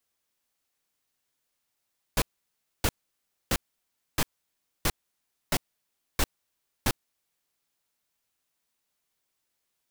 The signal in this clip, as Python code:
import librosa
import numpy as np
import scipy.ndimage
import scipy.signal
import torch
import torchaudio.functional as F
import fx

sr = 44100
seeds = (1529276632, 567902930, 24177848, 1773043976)

y = fx.noise_burst(sr, seeds[0], colour='pink', on_s=0.05, off_s=0.62, bursts=8, level_db=-23.5)